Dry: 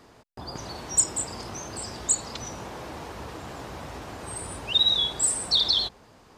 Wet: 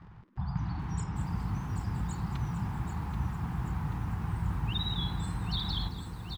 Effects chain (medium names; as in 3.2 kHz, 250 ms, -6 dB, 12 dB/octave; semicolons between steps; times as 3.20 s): elliptic band-stop 180–810 Hz, stop band 40 dB; crackle 83 per s -40 dBFS; low-pass 1.6 kHz 12 dB/octave; resonant low shelf 490 Hz +10.5 dB, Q 1.5; on a send: frequency-shifting echo 216 ms, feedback 35%, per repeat +140 Hz, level -16 dB; on the sum: bit-crushed delay 783 ms, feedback 55%, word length 9-bit, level -7 dB